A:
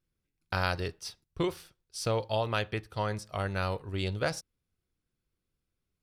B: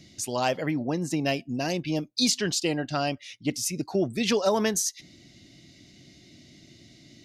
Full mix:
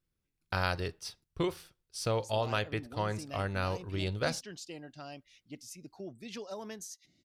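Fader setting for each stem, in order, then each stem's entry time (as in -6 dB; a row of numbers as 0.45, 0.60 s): -1.5, -18.5 dB; 0.00, 2.05 s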